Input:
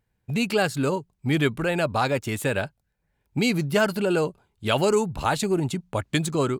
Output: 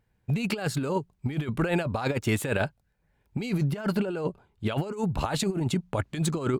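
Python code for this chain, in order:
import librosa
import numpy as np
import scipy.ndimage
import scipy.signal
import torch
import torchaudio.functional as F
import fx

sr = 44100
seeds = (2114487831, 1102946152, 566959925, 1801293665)

y = fx.high_shelf(x, sr, hz=4100.0, db=fx.steps((0.0, -5.5), (3.63, -12.0), (4.92, -6.5)))
y = fx.over_compress(y, sr, threshold_db=-26.0, ratio=-0.5)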